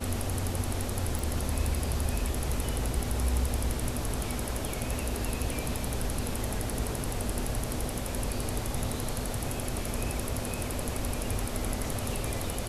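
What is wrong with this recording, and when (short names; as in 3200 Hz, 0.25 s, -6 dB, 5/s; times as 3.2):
1.19 pop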